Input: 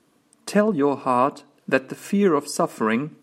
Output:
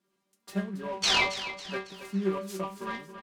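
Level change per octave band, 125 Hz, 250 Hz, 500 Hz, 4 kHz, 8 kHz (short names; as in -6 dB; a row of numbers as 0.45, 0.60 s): -9.0, -12.0, -13.5, +9.5, -2.5 dB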